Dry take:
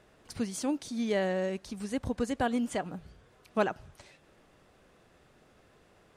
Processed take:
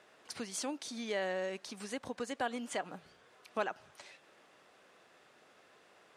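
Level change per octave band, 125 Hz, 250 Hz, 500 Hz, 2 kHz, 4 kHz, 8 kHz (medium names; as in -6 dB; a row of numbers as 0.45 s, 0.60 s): -14.0 dB, -11.0 dB, -6.0 dB, -2.5 dB, -0.5 dB, -0.5 dB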